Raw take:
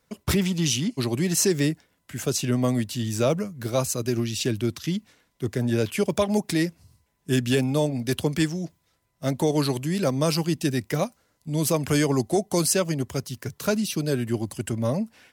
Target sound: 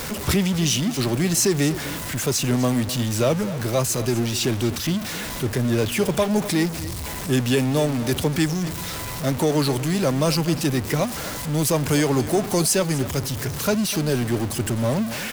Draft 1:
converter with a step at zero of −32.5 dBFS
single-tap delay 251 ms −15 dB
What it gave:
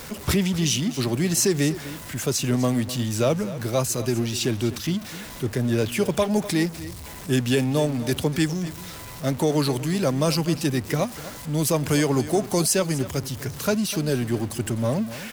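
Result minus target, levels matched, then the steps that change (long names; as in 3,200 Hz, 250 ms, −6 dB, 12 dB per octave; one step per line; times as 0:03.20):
converter with a step at zero: distortion −7 dB
change: converter with a step at zero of −24.5 dBFS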